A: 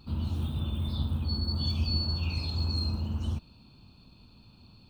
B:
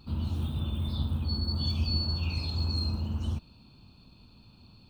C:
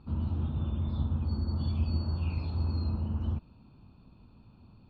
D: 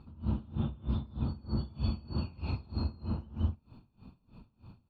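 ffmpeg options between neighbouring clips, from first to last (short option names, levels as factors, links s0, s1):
-af anull
-af "lowpass=1700"
-af "aecho=1:1:163.3|209.9:1|0.398,aeval=exprs='val(0)*pow(10,-24*(0.5-0.5*cos(2*PI*3.2*n/s))/20)':c=same,volume=1.26"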